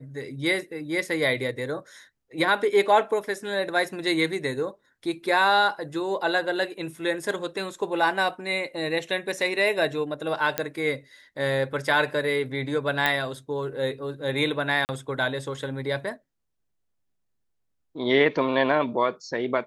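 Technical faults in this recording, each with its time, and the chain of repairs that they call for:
10.58 s: pop -7 dBFS
13.06 s: pop -9 dBFS
14.85–14.89 s: dropout 39 ms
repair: de-click; interpolate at 14.85 s, 39 ms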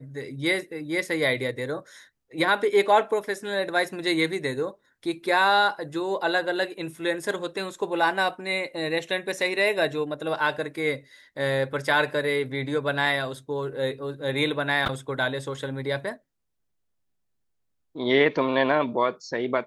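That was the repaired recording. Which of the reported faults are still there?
nothing left

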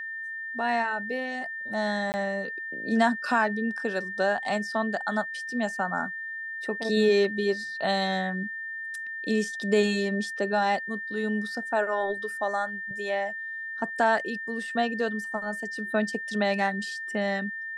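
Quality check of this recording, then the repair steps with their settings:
whine 1.8 kHz -33 dBFS
2.12–2.14 s: dropout 19 ms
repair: band-stop 1.8 kHz, Q 30; interpolate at 2.12 s, 19 ms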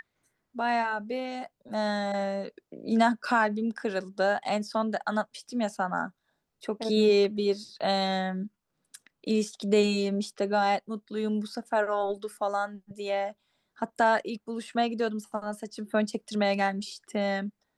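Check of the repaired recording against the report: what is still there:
nothing left

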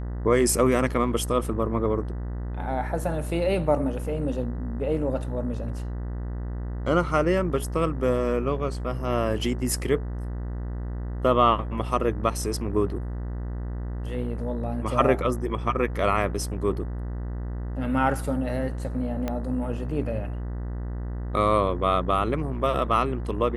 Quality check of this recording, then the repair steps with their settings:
buzz 60 Hz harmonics 33 -31 dBFS
19.28 s: pop -15 dBFS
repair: de-click; de-hum 60 Hz, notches 33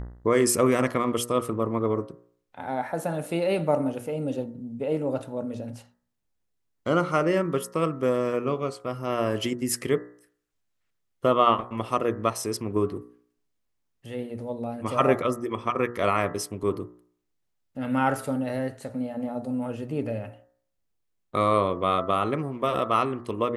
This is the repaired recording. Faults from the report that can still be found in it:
19.28 s: pop

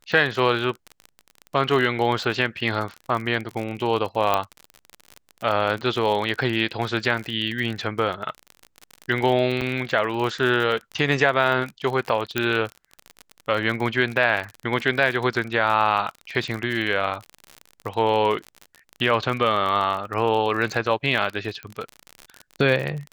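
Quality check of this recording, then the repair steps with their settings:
crackle 46 per s -27 dBFS
4.34 s: pop -7 dBFS
9.61–9.62 s: dropout 7.1 ms
12.38 s: pop -8 dBFS
21.63 s: pop -21 dBFS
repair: de-click; interpolate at 9.61 s, 7.1 ms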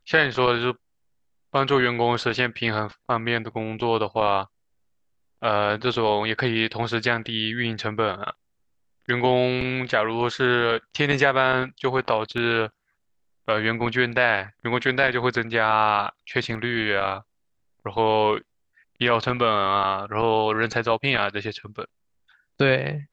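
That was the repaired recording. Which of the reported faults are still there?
12.38 s: pop

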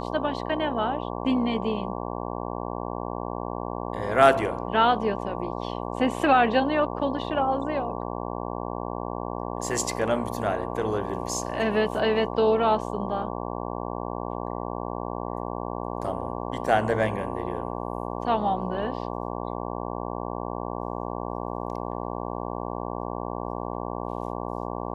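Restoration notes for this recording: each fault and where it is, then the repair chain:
buzz 60 Hz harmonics 19 -32 dBFS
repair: de-hum 60 Hz, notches 19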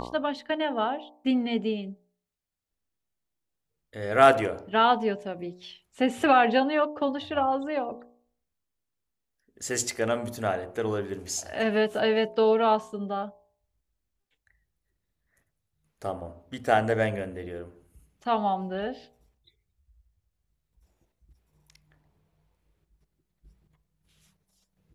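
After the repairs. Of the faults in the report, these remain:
nothing left

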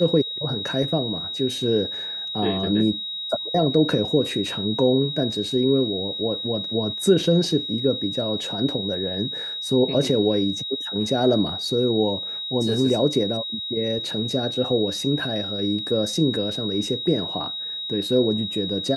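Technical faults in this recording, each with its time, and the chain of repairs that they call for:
whine 3.8 kHz -28 dBFS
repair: band-stop 3.8 kHz, Q 30

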